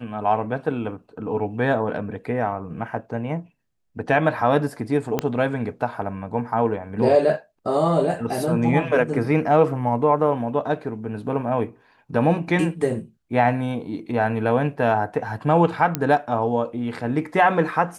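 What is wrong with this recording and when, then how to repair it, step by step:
5.19 s: pop -8 dBFS
15.95 s: pop -6 dBFS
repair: de-click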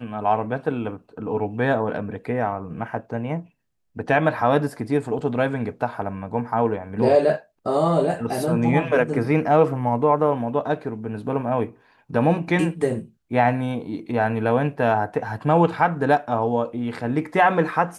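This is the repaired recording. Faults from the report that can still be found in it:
5.19 s: pop

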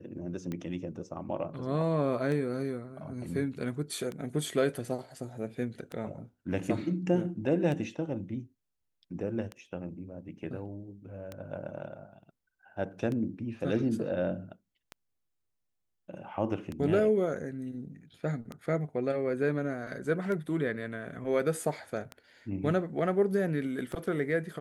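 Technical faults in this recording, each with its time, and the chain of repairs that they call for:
tick 33 1/3 rpm -24 dBFS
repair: de-click

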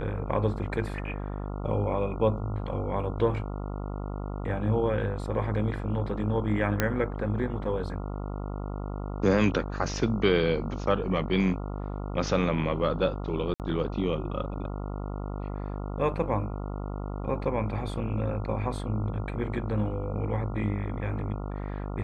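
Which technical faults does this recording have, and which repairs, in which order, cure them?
buzz 50 Hz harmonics 28 -34 dBFS
6.80 s: pop -9 dBFS
13.54–13.60 s: dropout 58 ms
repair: de-click; de-hum 50 Hz, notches 28; interpolate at 13.54 s, 58 ms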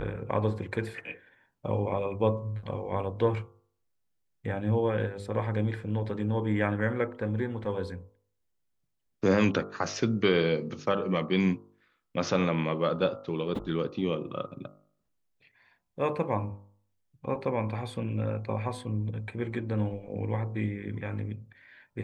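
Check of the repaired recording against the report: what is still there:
nothing left

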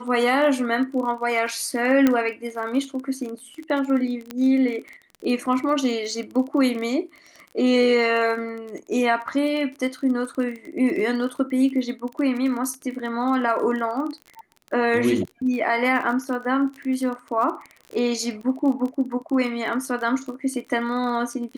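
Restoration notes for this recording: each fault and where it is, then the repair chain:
crackle 27 per s -30 dBFS
2.07 s: pop -6 dBFS
4.31 s: pop -15 dBFS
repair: de-click

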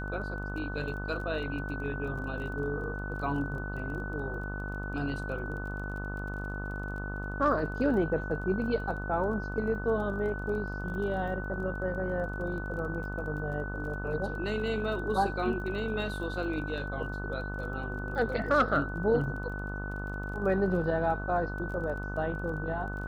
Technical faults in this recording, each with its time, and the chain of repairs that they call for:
buzz 50 Hz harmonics 29 -37 dBFS
crackle 21 per s -41 dBFS
whine 1.5 kHz -39 dBFS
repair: de-click; band-stop 1.5 kHz, Q 30; de-hum 50 Hz, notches 29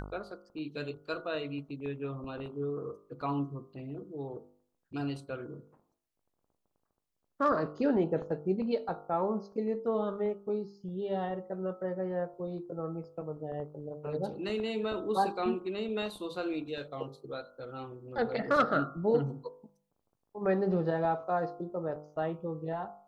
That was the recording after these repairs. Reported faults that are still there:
nothing left

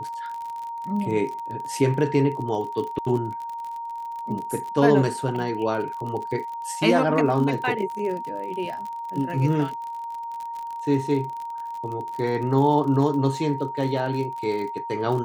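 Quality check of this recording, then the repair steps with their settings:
crackle 46 per s -31 dBFS
whine 930 Hz -30 dBFS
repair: de-click; band-stop 930 Hz, Q 30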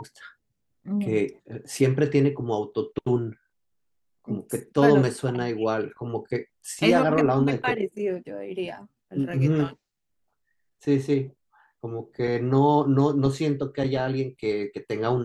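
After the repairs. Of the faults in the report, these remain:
nothing left

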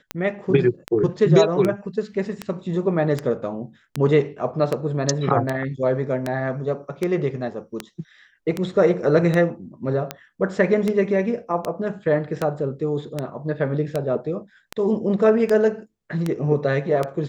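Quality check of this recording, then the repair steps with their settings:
tick 78 rpm -10 dBFS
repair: de-click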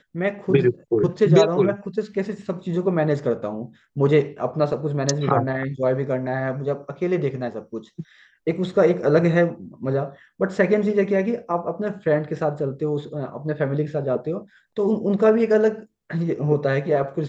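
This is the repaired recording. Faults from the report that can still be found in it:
nothing left

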